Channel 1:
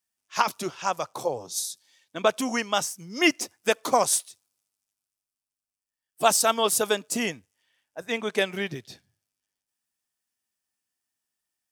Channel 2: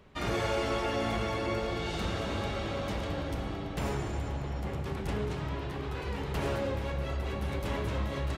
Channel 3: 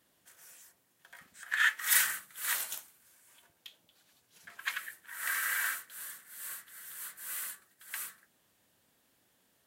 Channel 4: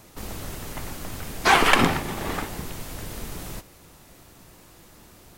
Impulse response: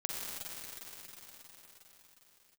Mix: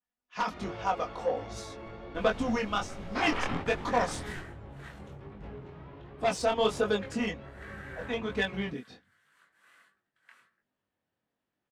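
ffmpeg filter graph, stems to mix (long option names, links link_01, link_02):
-filter_complex "[0:a]aecho=1:1:4.1:0.61,asoftclip=type=tanh:threshold=-13.5dB,aphaser=in_gain=1:out_gain=1:delay=1.6:decay=0.28:speed=0.45:type=sinusoidal,volume=-1dB,asplit=2[link_01][link_02];[1:a]adelay=350,volume=-7.5dB[link_03];[2:a]adelay=2350,volume=-7.5dB[link_04];[3:a]acompressor=threshold=-27dB:ratio=1.5,adelay=1700,volume=-5.5dB[link_05];[link_02]apad=whole_len=312093[link_06];[link_05][link_06]sidechaingate=range=-33dB:threshold=-52dB:ratio=16:detection=peak[link_07];[link_01][link_03][link_04][link_07]amix=inputs=4:normalize=0,flanger=delay=19.5:depth=4.8:speed=1.3,adynamicsmooth=sensitivity=0.5:basefreq=2600,adynamicequalizer=threshold=0.00794:dfrequency=2800:dqfactor=0.7:tfrequency=2800:tqfactor=0.7:attack=5:release=100:ratio=0.375:range=2:mode=boostabove:tftype=highshelf"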